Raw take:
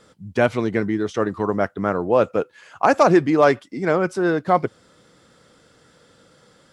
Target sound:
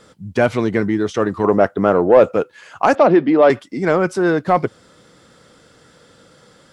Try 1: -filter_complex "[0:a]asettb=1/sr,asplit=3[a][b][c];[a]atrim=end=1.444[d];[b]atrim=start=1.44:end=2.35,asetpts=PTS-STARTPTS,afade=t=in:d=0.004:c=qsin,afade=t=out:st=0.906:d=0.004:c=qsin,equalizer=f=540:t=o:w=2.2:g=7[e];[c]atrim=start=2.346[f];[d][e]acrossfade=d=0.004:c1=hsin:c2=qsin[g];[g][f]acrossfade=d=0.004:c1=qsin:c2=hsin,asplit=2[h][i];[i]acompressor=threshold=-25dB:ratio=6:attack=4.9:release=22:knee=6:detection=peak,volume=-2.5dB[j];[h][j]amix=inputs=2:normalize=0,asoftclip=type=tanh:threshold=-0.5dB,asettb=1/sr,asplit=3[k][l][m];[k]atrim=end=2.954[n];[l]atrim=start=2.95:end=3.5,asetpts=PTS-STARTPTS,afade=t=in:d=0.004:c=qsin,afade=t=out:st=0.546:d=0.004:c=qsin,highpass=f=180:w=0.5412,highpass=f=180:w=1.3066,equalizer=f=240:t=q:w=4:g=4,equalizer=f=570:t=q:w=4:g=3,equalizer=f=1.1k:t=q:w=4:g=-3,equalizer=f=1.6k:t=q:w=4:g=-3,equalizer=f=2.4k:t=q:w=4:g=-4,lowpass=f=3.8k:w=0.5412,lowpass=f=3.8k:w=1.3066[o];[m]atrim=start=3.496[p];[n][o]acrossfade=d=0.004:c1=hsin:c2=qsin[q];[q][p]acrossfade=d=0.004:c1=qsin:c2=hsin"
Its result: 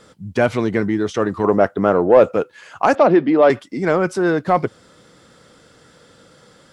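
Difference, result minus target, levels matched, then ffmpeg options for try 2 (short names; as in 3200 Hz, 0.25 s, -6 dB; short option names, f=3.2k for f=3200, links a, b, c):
compressor: peak gain reduction +5 dB
-filter_complex "[0:a]asettb=1/sr,asplit=3[a][b][c];[a]atrim=end=1.444[d];[b]atrim=start=1.44:end=2.35,asetpts=PTS-STARTPTS,afade=t=in:d=0.004:c=qsin,afade=t=out:st=0.906:d=0.004:c=qsin,equalizer=f=540:t=o:w=2.2:g=7[e];[c]atrim=start=2.346[f];[d][e]acrossfade=d=0.004:c1=hsin:c2=qsin[g];[g][f]acrossfade=d=0.004:c1=qsin:c2=hsin,asplit=2[h][i];[i]acompressor=threshold=-19dB:ratio=6:attack=4.9:release=22:knee=6:detection=peak,volume=-2.5dB[j];[h][j]amix=inputs=2:normalize=0,asoftclip=type=tanh:threshold=-0.5dB,asettb=1/sr,asplit=3[k][l][m];[k]atrim=end=2.954[n];[l]atrim=start=2.95:end=3.5,asetpts=PTS-STARTPTS,afade=t=in:d=0.004:c=qsin,afade=t=out:st=0.546:d=0.004:c=qsin,highpass=f=180:w=0.5412,highpass=f=180:w=1.3066,equalizer=f=240:t=q:w=4:g=4,equalizer=f=570:t=q:w=4:g=3,equalizer=f=1.1k:t=q:w=4:g=-3,equalizer=f=1.6k:t=q:w=4:g=-3,equalizer=f=2.4k:t=q:w=4:g=-4,lowpass=f=3.8k:w=0.5412,lowpass=f=3.8k:w=1.3066[o];[m]atrim=start=3.496[p];[n][o]acrossfade=d=0.004:c1=hsin:c2=qsin[q];[q][p]acrossfade=d=0.004:c1=qsin:c2=hsin"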